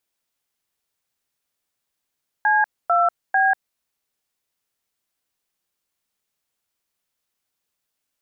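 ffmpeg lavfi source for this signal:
ffmpeg -f lavfi -i "aevalsrc='0.141*clip(min(mod(t,0.446),0.192-mod(t,0.446))/0.002,0,1)*(eq(floor(t/0.446),0)*(sin(2*PI*852*mod(t,0.446))+sin(2*PI*1633*mod(t,0.446)))+eq(floor(t/0.446),1)*(sin(2*PI*697*mod(t,0.446))+sin(2*PI*1336*mod(t,0.446)))+eq(floor(t/0.446),2)*(sin(2*PI*770*mod(t,0.446))+sin(2*PI*1633*mod(t,0.446))))':duration=1.338:sample_rate=44100" out.wav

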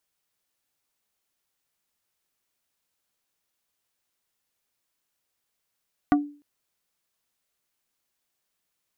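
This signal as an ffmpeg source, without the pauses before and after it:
ffmpeg -f lavfi -i "aevalsrc='0.211*pow(10,-3*t/0.39)*sin(2*PI*291*t)+0.133*pow(10,-3*t/0.13)*sin(2*PI*727.5*t)+0.0841*pow(10,-3*t/0.074)*sin(2*PI*1164*t)+0.0531*pow(10,-3*t/0.057)*sin(2*PI*1455*t)+0.0335*pow(10,-3*t/0.041)*sin(2*PI*1891.5*t)':duration=0.3:sample_rate=44100" out.wav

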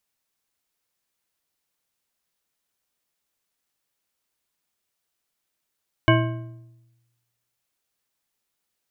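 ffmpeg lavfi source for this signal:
ffmpeg -f lavfi -i "aevalsrc='0.178*pow(10,-3*t/1.12)*sin(2*PI*119*t)+0.15*pow(10,-3*t/0.826)*sin(2*PI*328.1*t)+0.126*pow(10,-3*t/0.675)*sin(2*PI*643.1*t)+0.106*pow(10,-3*t/0.581)*sin(2*PI*1063*t)+0.0891*pow(10,-3*t/0.515)*sin(2*PI*1587.5*t)+0.075*pow(10,-3*t/0.466)*sin(2*PI*2218.2*t)+0.0631*pow(10,-3*t/0.427)*sin(2*PI*2952.4*t)':duration=1.55:sample_rate=44100" out.wav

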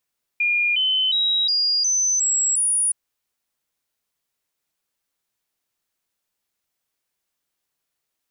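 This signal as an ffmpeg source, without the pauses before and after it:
ffmpeg -f lavfi -i "aevalsrc='0.141*clip(min(mod(t,0.36),0.36-mod(t,0.36))/0.005,0,1)*sin(2*PI*2420*pow(2,floor(t/0.36)/3)*mod(t,0.36))':duration=2.52:sample_rate=44100" out.wav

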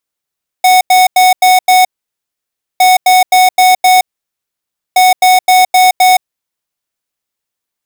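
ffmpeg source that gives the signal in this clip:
ffmpeg -f lavfi -i "aevalsrc='0.501*(2*lt(mod(739*t,1),0.5)-1)*clip(min(mod(mod(t,2.16),0.26),0.17-mod(mod(t,2.16),0.26))/0.005,0,1)*lt(mod(t,2.16),1.3)':duration=6.48:sample_rate=44100" out.wav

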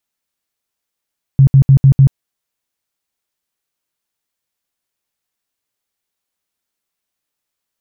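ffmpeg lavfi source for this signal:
ffmpeg -f lavfi -i "aevalsrc='0.708*sin(2*PI*136*mod(t,0.15))*lt(mod(t,0.15),11/136)':duration=0.75:sample_rate=44100" out.wav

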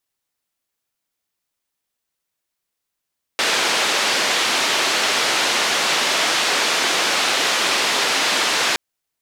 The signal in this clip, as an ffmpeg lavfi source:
ffmpeg -f lavfi -i "anoisesrc=color=white:duration=5.37:sample_rate=44100:seed=1,highpass=frequency=320,lowpass=frequency=4400,volume=-7.2dB" out.wav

